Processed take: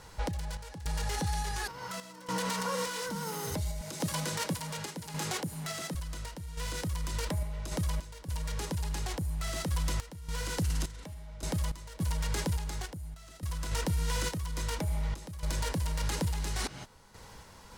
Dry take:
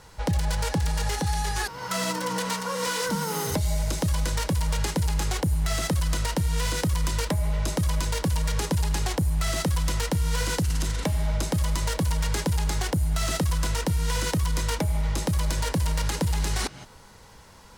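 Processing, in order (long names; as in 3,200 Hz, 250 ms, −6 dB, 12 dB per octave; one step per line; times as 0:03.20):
0:03.81–0:05.95: high-pass filter 140 Hz 24 dB per octave
brickwall limiter −22.5 dBFS, peak gain reduction 7 dB
sample-and-hold tremolo, depth 90%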